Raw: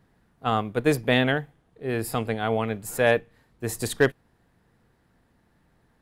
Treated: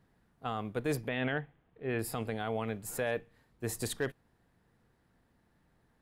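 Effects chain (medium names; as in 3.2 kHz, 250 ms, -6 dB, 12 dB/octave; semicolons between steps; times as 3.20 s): 1.08–1.99 s: resonant high shelf 4 kHz -13.5 dB, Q 1.5; peak limiter -17 dBFS, peak gain reduction 10.5 dB; trim -6 dB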